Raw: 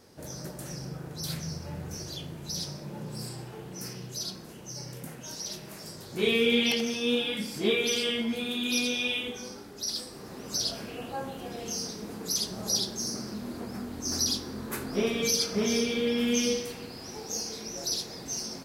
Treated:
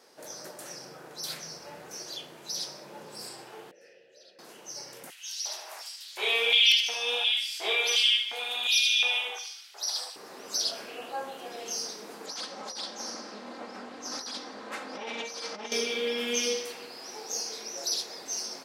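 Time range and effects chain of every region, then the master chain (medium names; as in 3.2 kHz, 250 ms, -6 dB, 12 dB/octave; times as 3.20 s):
3.71–4.39 s: vowel filter e + bass shelf 130 Hz +11.5 dB
5.10–10.16 s: LFO high-pass square 1.4 Hz 770–3000 Hz + thinning echo 74 ms, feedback 42%, high-pass 700 Hz, level -9 dB
12.26–15.72 s: comb filter that takes the minimum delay 3.8 ms + compressor with a negative ratio -33 dBFS + distance through air 92 m
whole clip: high-pass 500 Hz 12 dB/octave; treble shelf 10 kHz -6 dB; trim +2 dB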